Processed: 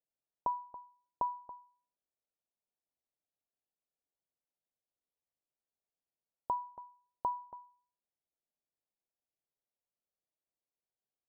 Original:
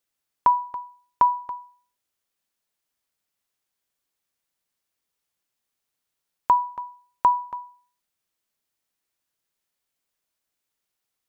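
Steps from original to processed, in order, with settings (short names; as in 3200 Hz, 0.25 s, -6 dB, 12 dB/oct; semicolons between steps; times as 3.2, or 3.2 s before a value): ladder low-pass 850 Hz, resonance 35%; gain -4 dB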